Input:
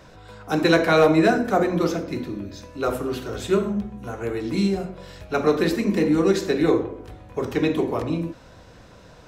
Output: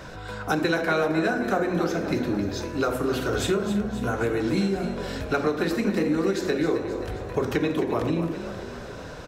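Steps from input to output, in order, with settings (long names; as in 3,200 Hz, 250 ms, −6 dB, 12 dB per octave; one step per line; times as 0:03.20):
parametric band 1,500 Hz +5 dB 0.3 octaves
downward compressor 6 to 1, threshold −29 dBFS, peak gain reduction 16.5 dB
on a send: echo with shifted repeats 265 ms, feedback 61%, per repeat +35 Hz, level −11 dB
on the sum: level +7 dB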